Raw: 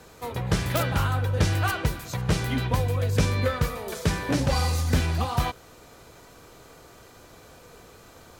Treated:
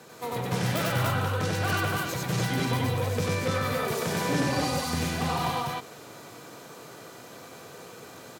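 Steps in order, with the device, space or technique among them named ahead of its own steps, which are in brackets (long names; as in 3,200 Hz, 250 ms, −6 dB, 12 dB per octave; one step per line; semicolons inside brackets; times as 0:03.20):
soft clipper into limiter (soft clipping −16.5 dBFS, distortion −17 dB; brickwall limiter −22.5 dBFS, peak gain reduction 5.5 dB)
high-pass filter 120 Hz 24 dB per octave
loudspeakers that aren't time-aligned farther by 32 metres 0 dB, 68 metres −7 dB, 82 metres −11 dB, 99 metres −1 dB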